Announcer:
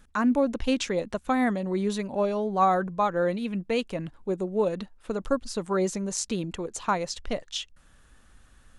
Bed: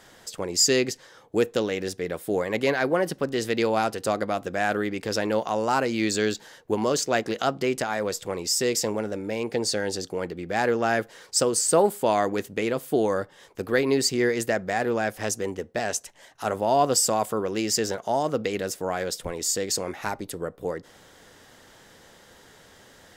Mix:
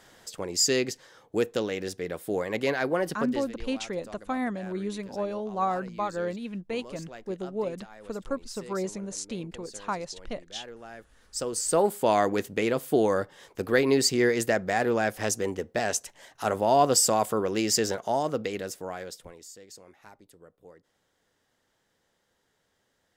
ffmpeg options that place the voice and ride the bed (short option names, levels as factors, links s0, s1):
-filter_complex "[0:a]adelay=3000,volume=0.531[s0];[1:a]volume=7.5,afade=t=out:st=3.22:d=0.29:silence=0.133352,afade=t=in:st=11.15:d=1.01:silence=0.0891251,afade=t=out:st=17.77:d=1.72:silence=0.0841395[s1];[s0][s1]amix=inputs=2:normalize=0"